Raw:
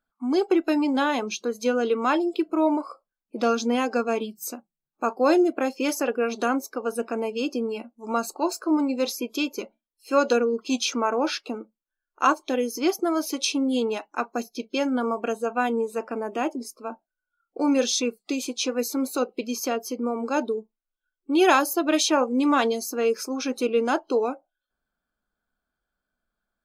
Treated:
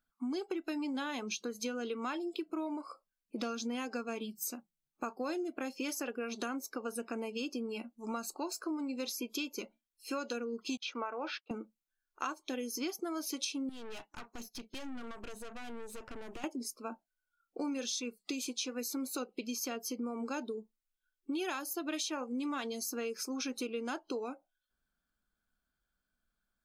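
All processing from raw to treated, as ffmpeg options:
ffmpeg -i in.wav -filter_complex "[0:a]asettb=1/sr,asplit=3[link_01][link_02][link_03];[link_01]atrim=end=10.774[link_04];[link_02]atrim=start=10.77:end=11.51,asetpts=PTS-STARTPTS,afade=type=in:duration=0.004:curve=qsin,afade=type=out:start_time=0.736:duration=0.004:curve=qsin,aemphasis=mode=reproduction:type=50fm,agate=range=-33dB:threshold=-32dB:ratio=3:release=100:detection=peak,highpass=430,lowpass=3700[link_05];[link_03]atrim=start=11.506[link_06];[link_04][link_05]acrossfade=duration=0.004:curve1=hsin:curve2=qsin[link_07];[link_07][link_06]acrossfade=duration=0.004:curve1=qsin:curve2=hsin,asettb=1/sr,asplit=3[link_08][link_09][link_10];[link_08]atrim=end=13.694[link_11];[link_09]atrim=start=13.69:end=16.44,asetpts=PTS-STARTPTS,afade=type=in:duration=0.004:curve=qsin,afade=type=out:start_time=2.746:duration=0.004:curve=qsin,acompressor=threshold=-29dB:ratio=5:attack=3.2:release=140:knee=1:detection=peak,aeval=exprs='(tanh(70.8*val(0)+0.65)-tanh(0.65))/70.8':channel_layout=same[link_12];[link_10]atrim=start=16.436[link_13];[link_11][link_12]acrossfade=duration=0.004:curve1=hsin:curve2=qsin[link_14];[link_14][link_13]acrossfade=duration=0.004:curve1=qsin:curve2=hsin,equalizer=frequency=620:width=0.58:gain=-8,acompressor=threshold=-35dB:ratio=6" out.wav

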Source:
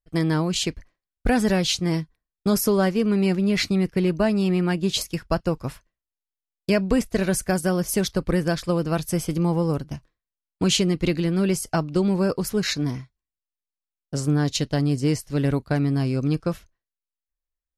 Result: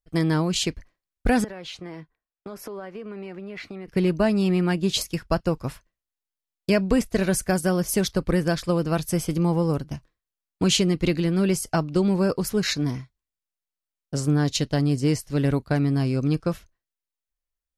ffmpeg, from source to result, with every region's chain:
ffmpeg -i in.wav -filter_complex "[0:a]asettb=1/sr,asplit=3[link_01][link_02][link_03];[link_01]atrim=end=1.444[link_04];[link_02]atrim=start=1.44:end=3.88,asetpts=PTS-STARTPTS,afade=type=in:duration=0.004:curve=qsin,afade=type=out:start_time=2.436:duration=0.004:curve=qsin,acrossover=split=340 2800:gain=0.251 1 0.141[link_05][link_06][link_07];[link_05][link_06][link_07]amix=inputs=3:normalize=0,acompressor=threshold=-32dB:ratio=12:attack=3.2:release=140:knee=1:detection=peak[link_08];[link_03]atrim=start=3.876[link_09];[link_04][link_08]acrossfade=duration=0.004:curve1=hsin:curve2=qsin[link_10];[link_10][link_09]acrossfade=duration=0.004:curve1=qsin:curve2=hsin" out.wav

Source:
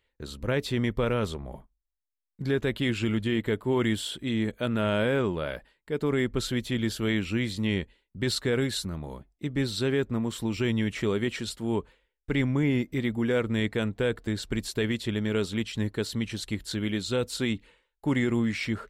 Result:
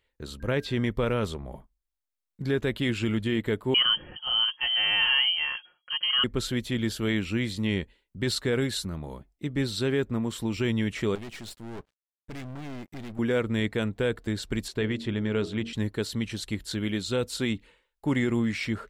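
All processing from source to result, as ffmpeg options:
ffmpeg -i in.wav -filter_complex "[0:a]asettb=1/sr,asplit=3[link_01][link_02][link_03];[link_01]atrim=end=0.404[link_04];[link_02]atrim=start=0.4:end=0.86,asetpts=PTS-STARTPTS,afade=type=in:duration=0.004:curve=qsin,afade=type=out:start_time=0.456:duration=0.004:curve=qsin,acrossover=split=5400[link_05][link_06];[link_06]acompressor=threshold=-52dB:ratio=4:attack=1:release=60[link_07];[link_05][link_07]amix=inputs=2:normalize=0,aeval=exprs='val(0)+0.00251*sin(2*PI*1600*n/s)':channel_layout=same[link_08];[link_03]atrim=start=0.856[link_09];[link_04][link_08]acrossfade=duration=0.004:curve1=hsin:curve2=qsin[link_10];[link_10][link_09]acrossfade=duration=0.004:curve1=qsin:curve2=hsin,asettb=1/sr,asplit=3[link_11][link_12][link_13];[link_11]atrim=end=3.744[link_14];[link_12]atrim=start=3.74:end=6.24,asetpts=PTS-STARTPTS,afade=type=in:duration=0.004:curve=qsin,afade=type=out:start_time=2.496:duration=0.004:curve=qsin,aecho=1:1:5.4:0.68,atrim=end_sample=110250,lowpass=frequency=2800:width_type=q:width=0.5098,lowpass=frequency=2800:width_type=q:width=0.6013,lowpass=frequency=2800:width_type=q:width=0.9,lowpass=frequency=2800:width_type=q:width=2.563,afreqshift=-3300[link_15];[link_13]atrim=start=6.236[link_16];[link_14][link_15]acrossfade=duration=0.004:curve1=hsin:curve2=qsin[link_17];[link_17][link_16]acrossfade=duration=0.004:curve1=qsin:curve2=hsin,asettb=1/sr,asplit=3[link_18][link_19][link_20];[link_18]atrim=end=11.154[link_21];[link_19]atrim=start=11.15:end=13.19,asetpts=PTS-STARTPTS,afade=type=in:duration=0.004:curve=qsin,afade=type=out:start_time=2.036:duration=0.004:curve=qsin,aeval=exprs='sgn(val(0))*max(abs(val(0))-0.00224,0)':channel_layout=same,aeval=exprs='(tanh(70.8*val(0)+0.7)-tanh(0.7))/70.8':channel_layout=same[link_22];[link_20]atrim=start=13.186[link_23];[link_21][link_22]acrossfade=duration=0.004:curve1=hsin:curve2=qsin[link_24];[link_24][link_23]acrossfade=duration=0.004:curve1=qsin:curve2=hsin,asettb=1/sr,asplit=3[link_25][link_26][link_27];[link_25]atrim=end=14.684[link_28];[link_26]atrim=start=14.68:end=15.73,asetpts=PTS-STARTPTS,afade=type=in:duration=0.004:curve=qsin,afade=type=out:start_time=1.046:duration=0.004:curve=qsin,aemphasis=mode=reproduction:type=50fm,bandreject=frequency=46.3:width_type=h:width=4,bandreject=frequency=92.6:width_type=h:width=4,bandreject=frequency=138.9:width_type=h:width=4,bandreject=frequency=185.2:width_type=h:width=4,bandreject=frequency=231.5:width_type=h:width=4,bandreject=frequency=277.8:width_type=h:width=4,bandreject=frequency=324.1:width_type=h:width=4,bandreject=frequency=370.4:width_type=h:width=4,bandreject=frequency=416.7:width_type=h:width=4,bandreject=frequency=463:width_type=h:width=4,bandreject=frequency=509.3:width_type=h:width=4,bandreject=frequency=555.6:width_type=h:width=4,bandreject=frequency=601.9:width_type=h:width=4,bandreject=frequency=648.2:width_type=h:width=4,bandreject=frequency=694.5:width_type=h:width=4,bandreject=frequency=740.8:width_type=h:width=4,bandreject=frequency=787.1:width_type=h:width=4[link_29];[link_27]atrim=start=15.726[link_30];[link_28][link_29]acrossfade=duration=0.004:curve1=hsin:curve2=qsin[link_31];[link_31][link_30]acrossfade=duration=0.004:curve1=qsin:curve2=hsin" out.wav

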